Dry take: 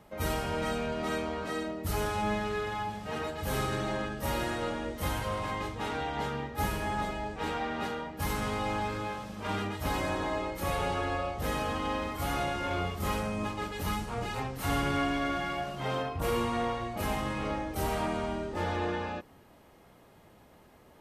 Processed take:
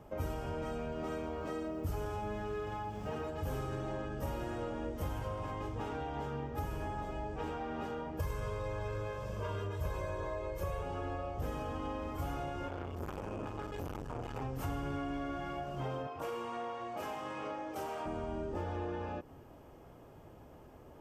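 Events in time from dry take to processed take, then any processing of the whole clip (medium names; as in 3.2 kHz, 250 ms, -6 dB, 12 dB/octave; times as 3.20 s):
0.67–3.24 s: bit-crushed delay 120 ms, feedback 55%, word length 9-bit, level -15 dB
8.19–10.83 s: comb 1.9 ms, depth 86%
12.68–14.42 s: transformer saturation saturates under 1.2 kHz
16.07–18.06 s: frequency weighting A
whole clip: graphic EQ with 31 bands 200 Hz -9 dB, 2 kHz -6 dB, 4 kHz -9 dB, 10 kHz -8 dB; compression, threshold -39 dBFS; tilt shelf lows +4.5 dB, about 780 Hz; trim +1.5 dB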